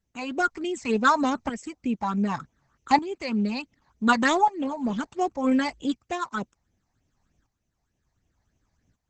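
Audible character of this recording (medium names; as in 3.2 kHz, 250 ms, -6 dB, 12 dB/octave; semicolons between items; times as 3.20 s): tremolo saw up 0.67 Hz, depth 75%; phasing stages 8, 3.3 Hz, lowest notch 400–1400 Hz; Opus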